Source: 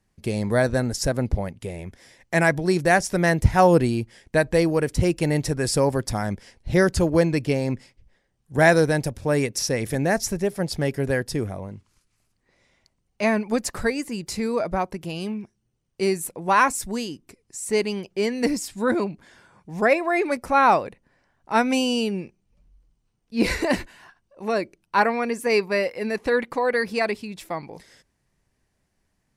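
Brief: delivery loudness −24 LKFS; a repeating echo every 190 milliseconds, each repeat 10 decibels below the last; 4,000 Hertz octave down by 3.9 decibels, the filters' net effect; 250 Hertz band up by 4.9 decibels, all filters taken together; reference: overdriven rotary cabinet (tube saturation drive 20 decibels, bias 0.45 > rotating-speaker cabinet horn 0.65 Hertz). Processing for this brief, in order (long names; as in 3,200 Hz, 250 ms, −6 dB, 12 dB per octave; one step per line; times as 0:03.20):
parametric band 250 Hz +6.5 dB
parametric band 4,000 Hz −5.5 dB
repeating echo 190 ms, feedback 32%, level −10 dB
tube saturation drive 20 dB, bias 0.45
rotating-speaker cabinet horn 0.65 Hz
level +4 dB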